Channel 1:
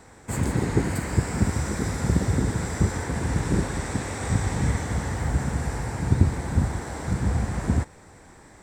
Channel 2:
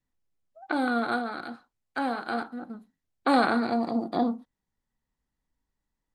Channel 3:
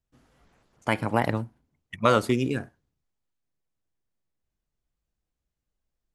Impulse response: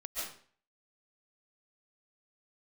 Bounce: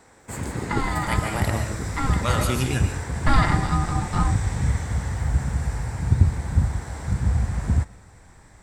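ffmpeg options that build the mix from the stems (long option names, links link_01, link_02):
-filter_complex "[0:a]lowshelf=frequency=190:gain=-7.5,volume=-2.5dB,asplit=2[link_01][link_02];[link_02]volume=-21.5dB[link_03];[1:a]aecho=1:1:5.9:0.71,aeval=exprs='val(0)*sin(2*PI*540*n/s)':channel_layout=same,volume=2.5dB,asplit=2[link_04][link_05];[2:a]alimiter=limit=-11.5dB:level=0:latency=1,crystalizer=i=4:c=0,adelay=200,volume=-1dB,asplit=2[link_06][link_07];[link_07]volume=-7.5dB[link_08];[link_05]apad=whole_len=279875[link_09];[link_06][link_09]sidechaincompress=threshold=-29dB:ratio=8:attack=6.6:release=655[link_10];[3:a]atrim=start_sample=2205[link_11];[link_03][link_08]amix=inputs=2:normalize=0[link_12];[link_12][link_11]afir=irnorm=-1:irlink=0[link_13];[link_01][link_04][link_10][link_13]amix=inputs=4:normalize=0,asubboost=boost=5.5:cutoff=130"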